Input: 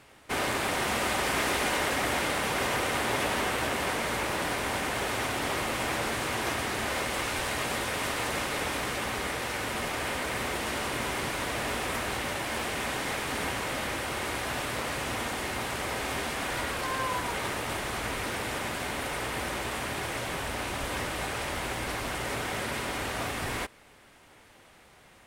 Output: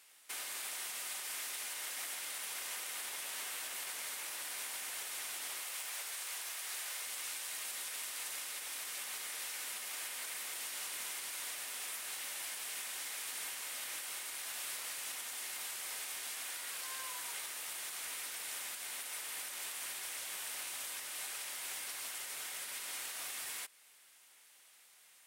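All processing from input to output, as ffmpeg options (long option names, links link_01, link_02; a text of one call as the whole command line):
ffmpeg -i in.wav -filter_complex "[0:a]asettb=1/sr,asplit=3[link_01][link_02][link_03];[link_01]atrim=end=5.614[link_04];[link_02]atrim=start=5.61:end=7.05,asetpts=PTS-STARTPTS,afade=type=in:duration=0.004:curve=qsin,afade=type=out:start_time=1.436:duration=0.004:curve=qsin,highpass=410,aeval=exprs='0.0631*(abs(mod(val(0)/0.0631+3,4)-2)-1)':channel_layout=same[link_05];[link_03]atrim=start=7.046[link_06];[link_04][link_05]acrossfade=duration=0.004:curve1=hsin:curve2=qsin[link_07];[link_07][link_06]acrossfade=duration=0.004:curve1=qsin:curve2=hsin,highpass=51,aderivative,alimiter=level_in=9.5dB:limit=-24dB:level=0:latency=1:release=230,volume=-9.5dB,volume=1.5dB" out.wav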